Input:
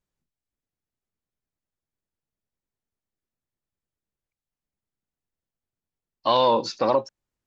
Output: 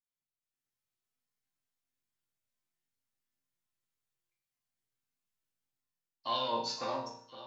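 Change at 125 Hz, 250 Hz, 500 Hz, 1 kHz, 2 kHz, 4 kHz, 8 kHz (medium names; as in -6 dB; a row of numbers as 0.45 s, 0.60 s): -13.0 dB, -14.0 dB, -16.5 dB, -12.5 dB, -8.0 dB, -7.5 dB, no reading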